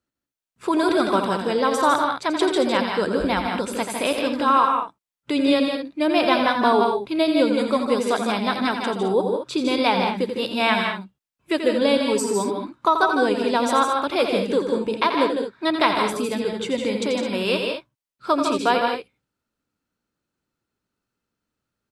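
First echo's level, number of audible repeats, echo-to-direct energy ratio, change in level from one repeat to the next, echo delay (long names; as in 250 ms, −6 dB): −8.5 dB, 3, −2.0 dB, repeats not evenly spaced, 85 ms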